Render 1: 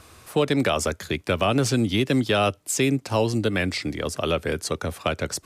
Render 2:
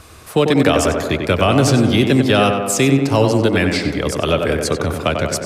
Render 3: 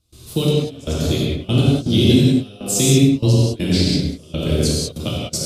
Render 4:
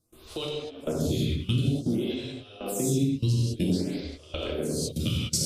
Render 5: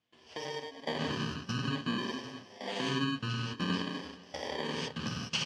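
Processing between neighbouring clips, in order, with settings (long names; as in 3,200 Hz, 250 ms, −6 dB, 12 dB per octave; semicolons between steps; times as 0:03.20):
low-shelf EQ 83 Hz +5.5 dB; on a send: tape delay 94 ms, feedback 78%, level −3.5 dB, low-pass 2,100 Hz; on the sum: level +6 dB
drawn EQ curve 230 Hz 0 dB, 780 Hz −15 dB, 1,800 Hz −20 dB, 3,600 Hz +1 dB, 7,400 Hz −2 dB; gate pattern ".xxx...xxx..x." 121 BPM −24 dB; reverb whose tail is shaped and stops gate 220 ms flat, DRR −5.5 dB; level −1.5 dB
downward compressor, threshold −21 dBFS, peak gain reduction 12.5 dB; phaser with staggered stages 0.53 Hz
samples in bit-reversed order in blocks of 32 samples; loudspeaker in its box 200–5,300 Hz, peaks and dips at 340 Hz −10 dB, 720 Hz +4 dB, 3,000 Hz +8 dB; single-tap delay 474 ms −23 dB; level −3 dB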